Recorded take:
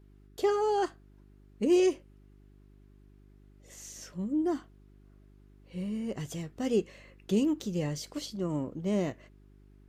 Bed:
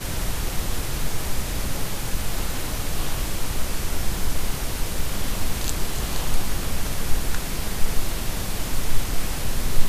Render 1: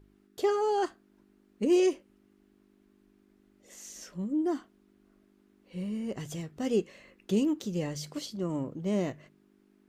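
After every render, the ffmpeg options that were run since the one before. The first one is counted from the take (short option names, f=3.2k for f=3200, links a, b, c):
-af "bandreject=f=50:t=h:w=4,bandreject=f=100:t=h:w=4,bandreject=f=150:t=h:w=4"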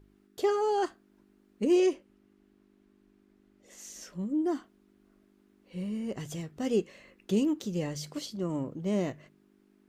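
-filter_complex "[0:a]asettb=1/sr,asplit=3[a][b][c];[a]atrim=end=1.724[d];[b]atrim=start=1.72:end=3.79,asetpts=PTS-STARTPTS,afade=t=in:d=0.004:c=qsin,afade=t=out:st=2.066:d=0.004:c=qsin,highshelf=f=7.2k:g=-6[e];[c]atrim=start=3.786[f];[d][e]acrossfade=d=0.004:c1=hsin:c2=qsin[g];[g][f]acrossfade=d=0.004:c1=qsin:c2=hsin"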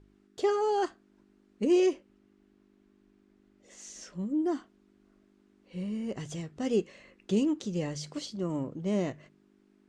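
-af "lowpass=f=8.6k:w=0.5412,lowpass=f=8.6k:w=1.3066"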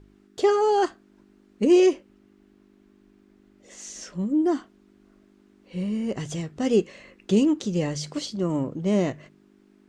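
-af "volume=7dB"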